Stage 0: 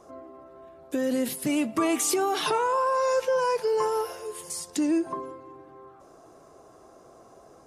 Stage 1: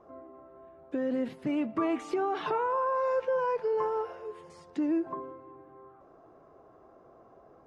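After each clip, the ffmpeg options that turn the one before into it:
-af "lowpass=1.9k,volume=-4dB"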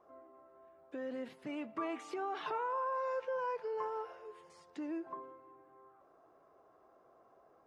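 -af "lowshelf=f=380:g=-12,volume=-5dB"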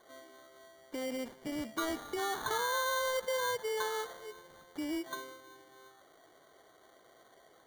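-af "acrusher=samples=17:mix=1:aa=0.000001,volume=3.5dB"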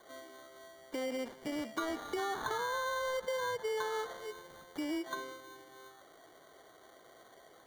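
-filter_complex "[0:a]acrossover=split=270|2100|7500[a][b][c][d];[a]acompressor=threshold=-54dB:ratio=4[e];[b]acompressor=threshold=-37dB:ratio=4[f];[c]acompressor=threshold=-51dB:ratio=4[g];[d]acompressor=threshold=-60dB:ratio=4[h];[e][f][g][h]amix=inputs=4:normalize=0,volume=3dB"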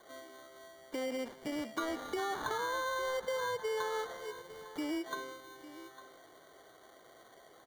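-af "aecho=1:1:854:0.168"

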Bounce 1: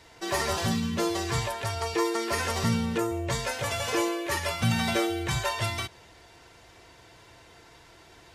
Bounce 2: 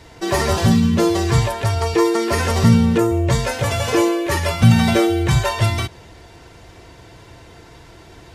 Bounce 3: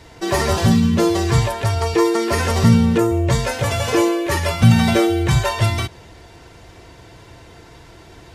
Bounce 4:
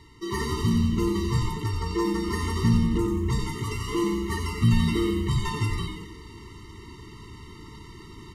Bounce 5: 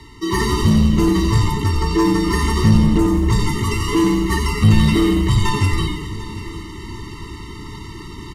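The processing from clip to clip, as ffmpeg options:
-af "lowshelf=f=460:g=9.5,volume=6dB"
-af anull
-filter_complex "[0:a]areverse,acompressor=mode=upward:threshold=-25dB:ratio=2.5,areverse,asplit=8[a][b][c][d][e][f][g][h];[b]adelay=90,afreqshift=-140,volume=-6dB[i];[c]adelay=180,afreqshift=-280,volume=-11.5dB[j];[d]adelay=270,afreqshift=-420,volume=-17dB[k];[e]adelay=360,afreqshift=-560,volume=-22.5dB[l];[f]adelay=450,afreqshift=-700,volume=-28.1dB[m];[g]adelay=540,afreqshift=-840,volume=-33.6dB[n];[h]adelay=630,afreqshift=-980,volume=-39.1dB[o];[a][i][j][k][l][m][n][o]amix=inputs=8:normalize=0,afftfilt=real='re*eq(mod(floor(b*sr/1024/450),2),0)':imag='im*eq(mod(floor(b*sr/1024/450),2),0)':win_size=1024:overlap=0.75,volume=-9dB"
-filter_complex "[0:a]asplit=2[a][b];[b]volume=23.5dB,asoftclip=hard,volume=-23.5dB,volume=-3.5dB[c];[a][c]amix=inputs=2:normalize=0,afreqshift=-13,aecho=1:1:746|1492|2238|2984|3730:0.141|0.0735|0.0382|0.0199|0.0103,volume=6dB"

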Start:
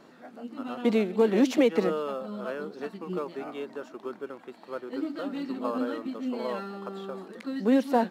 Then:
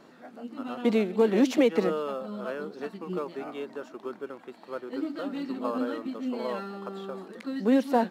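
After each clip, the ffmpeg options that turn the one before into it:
-af anull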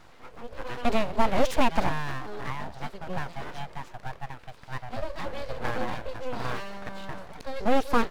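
-af "aeval=exprs='abs(val(0))':c=same,volume=3dB"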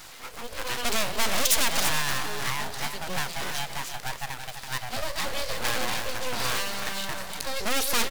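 -filter_complex "[0:a]aeval=exprs='(tanh(8.91*val(0)+0.55)-tanh(0.55))/8.91':c=same,crystalizer=i=9.5:c=0,asplit=2[a][b];[b]aecho=0:1:335:0.376[c];[a][c]amix=inputs=2:normalize=0,volume=3.5dB"

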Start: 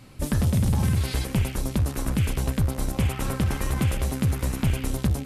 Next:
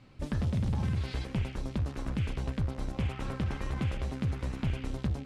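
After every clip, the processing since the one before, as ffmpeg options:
-af "lowpass=4.4k,volume=-8dB"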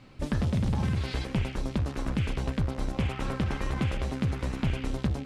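-af "equalizer=f=86:t=o:w=1.6:g=-4,volume=5.5dB"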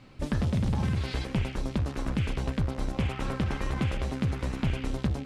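-af anull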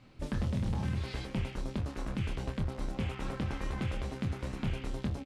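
-filter_complex "[0:a]asplit=2[a][b];[b]adelay=25,volume=-6dB[c];[a][c]amix=inputs=2:normalize=0,volume=-6.5dB"

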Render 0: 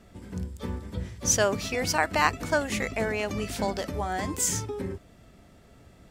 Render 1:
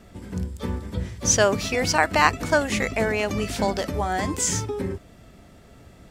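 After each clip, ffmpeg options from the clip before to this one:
-filter_complex "[0:a]acrossover=split=8400[a][b];[b]acompressor=threshold=-46dB:ratio=4:attack=1:release=60[c];[a][c]amix=inputs=2:normalize=0,volume=5dB"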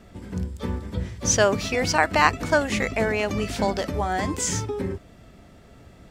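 -af "equalizer=f=12k:t=o:w=1.4:g=-4.5"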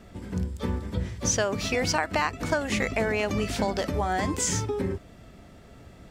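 -af "acompressor=threshold=-21dB:ratio=12"

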